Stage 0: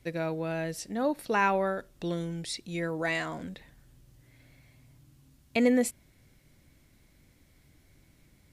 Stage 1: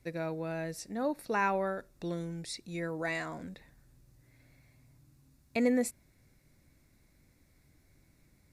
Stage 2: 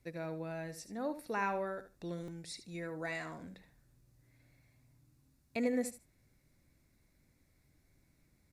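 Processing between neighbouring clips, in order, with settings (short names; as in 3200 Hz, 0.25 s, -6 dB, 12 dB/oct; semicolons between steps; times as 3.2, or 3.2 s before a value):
bell 3100 Hz -13 dB 0.22 oct; gain -4 dB
feedback echo 75 ms, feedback 16%, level -12 dB; stuck buffer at 2.23, samples 256, times 8; gain -5.5 dB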